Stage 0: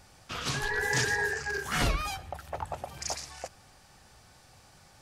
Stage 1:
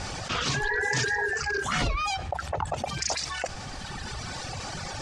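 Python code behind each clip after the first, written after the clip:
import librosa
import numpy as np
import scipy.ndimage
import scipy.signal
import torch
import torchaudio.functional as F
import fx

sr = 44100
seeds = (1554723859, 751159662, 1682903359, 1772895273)

y = fx.dereverb_blind(x, sr, rt60_s=1.7)
y = scipy.signal.sosfilt(scipy.signal.butter(4, 7600.0, 'lowpass', fs=sr, output='sos'), y)
y = fx.env_flatten(y, sr, amount_pct=70)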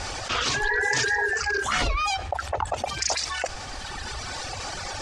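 y = fx.peak_eq(x, sr, hz=160.0, db=-12.5, octaves=1.1)
y = F.gain(torch.from_numpy(y), 3.5).numpy()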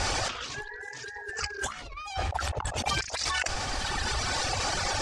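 y = fx.over_compress(x, sr, threshold_db=-31.0, ratio=-0.5)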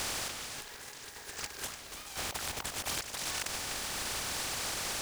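y = fx.spec_flatten(x, sr, power=0.26)
y = y + 10.0 ** (-8.5 / 20.0) * np.pad(y, (int(296 * sr / 1000.0), 0))[:len(y)]
y = F.gain(torch.from_numpy(y), -7.0).numpy()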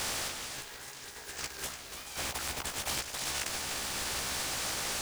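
y = fx.doubler(x, sr, ms=15.0, db=-4.5)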